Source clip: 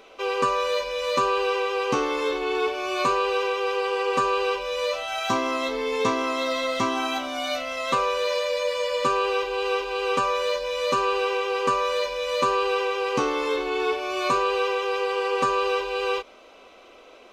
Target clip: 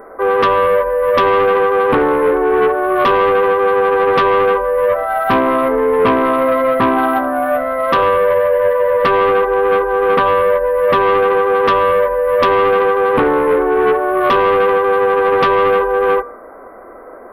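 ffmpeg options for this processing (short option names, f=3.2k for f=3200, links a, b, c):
-af "asuperstop=centerf=4700:order=20:qfactor=0.57,bandreject=f=69.23:t=h:w=4,bandreject=f=138.46:t=h:w=4,bandreject=f=207.69:t=h:w=4,bandreject=f=276.92:t=h:w=4,bandreject=f=346.15:t=h:w=4,bandreject=f=415.38:t=h:w=4,bandreject=f=484.61:t=h:w=4,bandreject=f=553.84:t=h:w=4,bandreject=f=623.07:t=h:w=4,bandreject=f=692.3:t=h:w=4,bandreject=f=761.53:t=h:w=4,bandreject=f=830.76:t=h:w=4,bandreject=f=899.99:t=h:w=4,bandreject=f=969.22:t=h:w=4,bandreject=f=1.03845k:t=h:w=4,bandreject=f=1.10768k:t=h:w=4,bandreject=f=1.17691k:t=h:w=4,bandreject=f=1.24614k:t=h:w=4,bandreject=f=1.31537k:t=h:w=4,bandreject=f=1.3846k:t=h:w=4,bandreject=f=1.45383k:t=h:w=4,bandreject=f=1.52306k:t=h:w=4,bandreject=f=1.59229k:t=h:w=4,bandreject=f=1.66152k:t=h:w=4,bandreject=f=1.73075k:t=h:w=4,bandreject=f=1.79998k:t=h:w=4,bandreject=f=1.86921k:t=h:w=4,bandreject=f=1.93844k:t=h:w=4,bandreject=f=2.00767k:t=h:w=4,bandreject=f=2.0769k:t=h:w=4,bandreject=f=2.14613k:t=h:w=4,bandreject=f=2.21536k:t=h:w=4,bandreject=f=2.28459k:t=h:w=4,bandreject=f=2.35382k:t=h:w=4,bandreject=f=2.42305k:t=h:w=4,bandreject=f=2.49228k:t=h:w=4,aeval=exprs='0.282*(cos(1*acos(clip(val(0)/0.282,-1,1)))-cos(1*PI/2))+0.112*(cos(5*acos(clip(val(0)/0.282,-1,1)))-cos(5*PI/2))':c=same,volume=5.5dB"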